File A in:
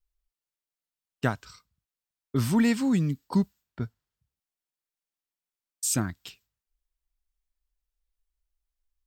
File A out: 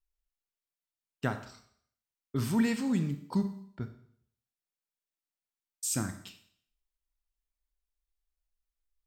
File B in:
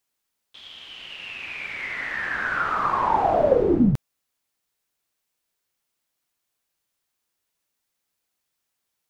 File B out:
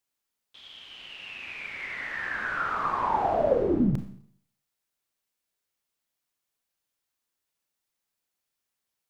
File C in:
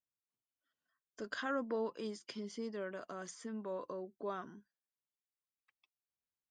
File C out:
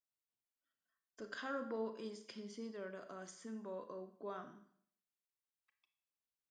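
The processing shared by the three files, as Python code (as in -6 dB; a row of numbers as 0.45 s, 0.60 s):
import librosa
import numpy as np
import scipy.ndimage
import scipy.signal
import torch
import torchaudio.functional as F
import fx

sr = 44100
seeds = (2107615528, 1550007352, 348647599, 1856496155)

y = fx.rev_schroeder(x, sr, rt60_s=0.61, comb_ms=28, drr_db=8.0)
y = y * 10.0 ** (-5.5 / 20.0)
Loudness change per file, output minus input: -5.0 LU, -5.0 LU, -4.5 LU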